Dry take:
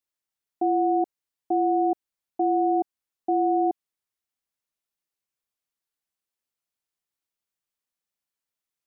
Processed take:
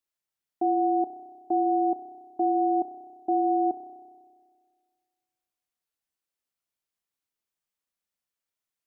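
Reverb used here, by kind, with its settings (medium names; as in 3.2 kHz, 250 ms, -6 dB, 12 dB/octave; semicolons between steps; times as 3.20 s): spring tank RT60 1.8 s, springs 31 ms, chirp 80 ms, DRR 8 dB; trim -1.5 dB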